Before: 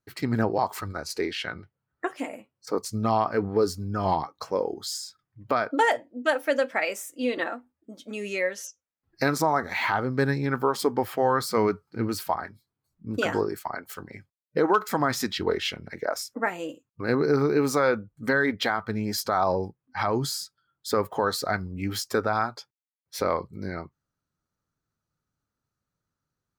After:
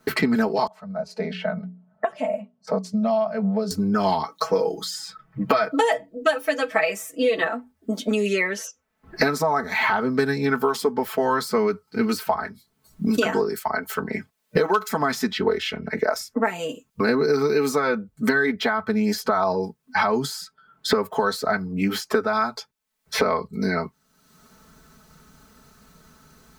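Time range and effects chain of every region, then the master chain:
0.67–3.71 s: two resonant band-passes 340 Hz, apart 1.7 oct + hum notches 60/120/180/240/300/360/420 Hz
4.31–7.48 s: hum notches 60/120/180 Hz + comb 6.2 ms, depth 96%
whole clip: comb 4.6 ms, depth 89%; three bands compressed up and down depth 100%

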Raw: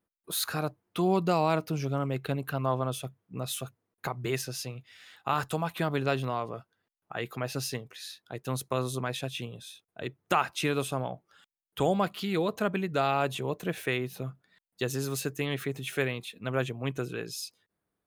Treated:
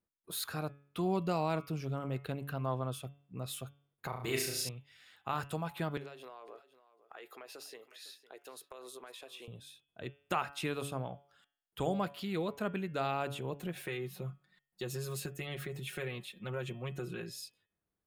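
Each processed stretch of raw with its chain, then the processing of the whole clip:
4.09–4.69 s: treble shelf 2.1 kHz +8 dB + flutter echo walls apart 6 m, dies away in 0.63 s
5.97–9.48 s: Chebyshev high-pass 380 Hz, order 3 + compression 12:1, threshold -37 dBFS + delay 506 ms -16.5 dB
13.58–17.30 s: comb 5.5 ms, depth 86% + compression 2.5:1, threshold -29 dBFS
whole clip: bass shelf 96 Hz +8.5 dB; band-stop 6.1 kHz, Q 11; de-hum 141.6 Hz, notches 25; trim -7.5 dB

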